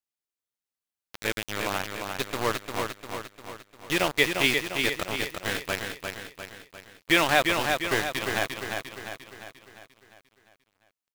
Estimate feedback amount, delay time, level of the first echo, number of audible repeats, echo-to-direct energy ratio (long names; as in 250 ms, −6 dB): 52%, 350 ms, −5.0 dB, 6, −3.5 dB